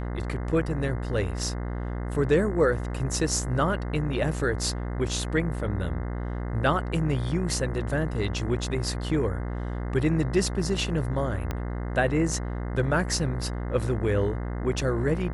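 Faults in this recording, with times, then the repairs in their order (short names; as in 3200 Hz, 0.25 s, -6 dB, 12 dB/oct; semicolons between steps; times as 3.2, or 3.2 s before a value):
buzz 60 Hz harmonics 35 -31 dBFS
11.51 pop -16 dBFS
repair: de-click; de-hum 60 Hz, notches 35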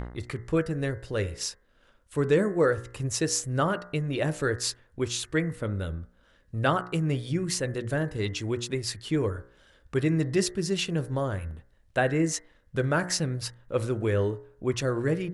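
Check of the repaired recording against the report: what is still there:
11.51 pop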